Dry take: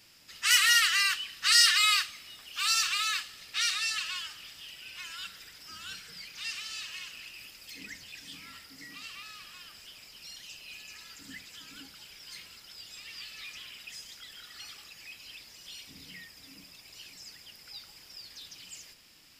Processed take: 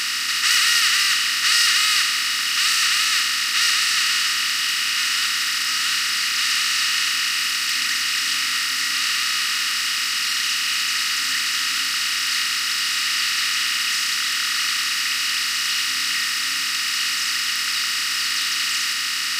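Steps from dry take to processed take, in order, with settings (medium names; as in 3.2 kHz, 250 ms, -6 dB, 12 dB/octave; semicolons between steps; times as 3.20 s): spectral levelling over time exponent 0.2; trim -2 dB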